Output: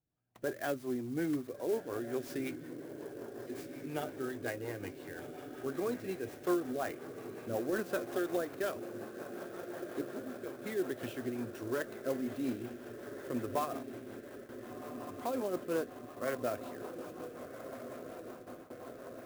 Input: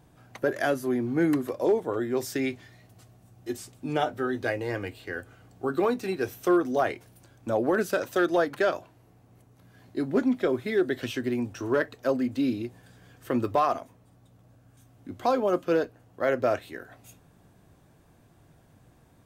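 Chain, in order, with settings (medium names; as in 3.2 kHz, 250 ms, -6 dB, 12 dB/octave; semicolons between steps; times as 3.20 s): 10.01–10.62 s: feedback comb 69 Hz, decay 0.31 s, harmonics odd, mix 80%; 15.65–16.35 s: peaking EQ 1.1 kHz +10.5 dB 0.26 oct; echo that smears into a reverb 1424 ms, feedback 74%, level -9.5 dB; rotary cabinet horn 5.5 Hz; gate with hold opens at -31 dBFS; sampling jitter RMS 0.034 ms; trim -8.5 dB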